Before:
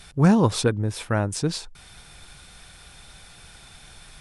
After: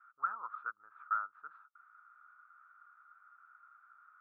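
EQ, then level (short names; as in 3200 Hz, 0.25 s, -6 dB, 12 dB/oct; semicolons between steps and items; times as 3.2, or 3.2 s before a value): Butterworth band-pass 1300 Hz, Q 6.5; air absorption 500 m; +5.0 dB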